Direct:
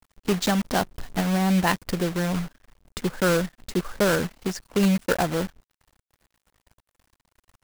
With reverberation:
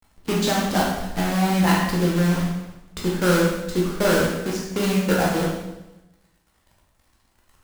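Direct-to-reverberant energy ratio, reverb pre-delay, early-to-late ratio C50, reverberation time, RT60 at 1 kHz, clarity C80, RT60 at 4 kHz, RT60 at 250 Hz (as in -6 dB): -3.5 dB, 10 ms, 2.0 dB, 1.0 s, 0.95 s, 5.0 dB, 0.90 s, 1.1 s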